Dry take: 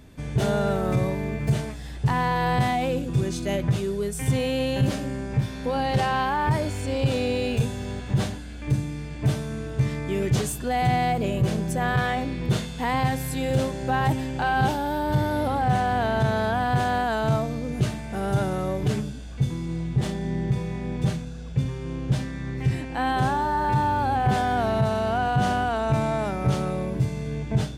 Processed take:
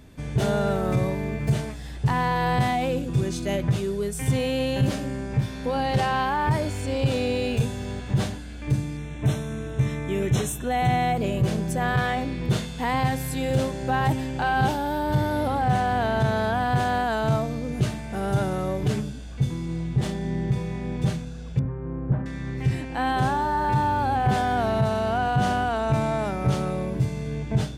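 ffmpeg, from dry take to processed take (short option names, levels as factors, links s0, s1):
-filter_complex "[0:a]asettb=1/sr,asplit=3[s0][s1][s2];[s0]atrim=end=8.974[s3];[s1]atrim=start=8.97:end=11.17,asetpts=PTS-STARTPTS,afade=t=in:d=0.004:c=qsin,afade=t=out:st=2.196:d=0.004:c=qsin,asuperstop=centerf=4700:order=20:qfactor=5[s4];[s2]atrim=start=11.166[s5];[s3][s4]acrossfade=d=0.004:c1=hsin:c2=qsin[s6];[s6][s5]acrossfade=d=0.004:c1=qsin:c2=hsin,asettb=1/sr,asplit=3[s7][s8][s9];[s7]atrim=end=21.594[s10];[s8]atrim=start=21.59:end=22.26,asetpts=PTS-STARTPTS,afade=t=in:d=0.004:c=qsin,afade=t=out:st=0.666:d=0.004:c=qsin,lowpass=f=1500:w=0.5412,lowpass=f=1500:w=1.3066[s11];[s9]atrim=start=22.256[s12];[s10][s11]acrossfade=d=0.004:c1=hsin:c2=qsin[s13];[s13][s12]acrossfade=d=0.004:c1=qsin:c2=hsin"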